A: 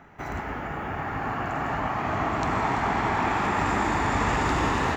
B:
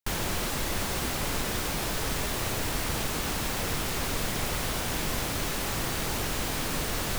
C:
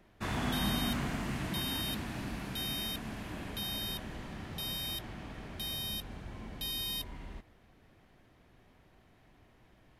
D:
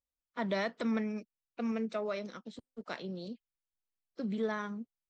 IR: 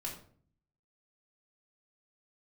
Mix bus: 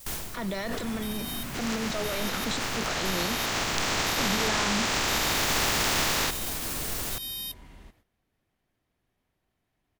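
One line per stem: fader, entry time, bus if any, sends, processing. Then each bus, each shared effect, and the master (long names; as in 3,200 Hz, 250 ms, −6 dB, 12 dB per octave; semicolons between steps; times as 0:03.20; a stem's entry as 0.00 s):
−0.5 dB, 1.35 s, no bus, no send, compressing power law on the bin magnitudes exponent 0.18; low-pass filter 7,000 Hz 24 dB per octave
−3.0 dB, 0.00 s, bus A, send −12.5 dB, automatic ducking −23 dB, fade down 0.25 s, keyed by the fourth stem
−4.0 dB, 0.50 s, bus A, no send, no processing
−0.5 dB, 0.00 s, bus A, no send, envelope flattener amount 100%
bus A: 0.0 dB, high-shelf EQ 5,100 Hz +11 dB; brickwall limiter −23.5 dBFS, peak gain reduction 11.5 dB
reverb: on, RT60 0.50 s, pre-delay 3 ms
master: noise gate −60 dBFS, range −12 dB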